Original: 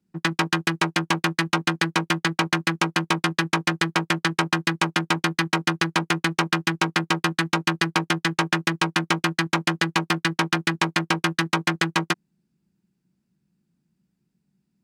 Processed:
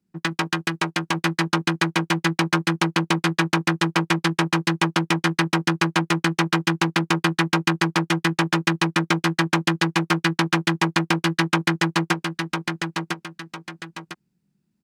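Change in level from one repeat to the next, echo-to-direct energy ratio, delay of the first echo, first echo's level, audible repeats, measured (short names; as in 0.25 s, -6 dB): -8.0 dB, -3.5 dB, 1.003 s, -4.0 dB, 2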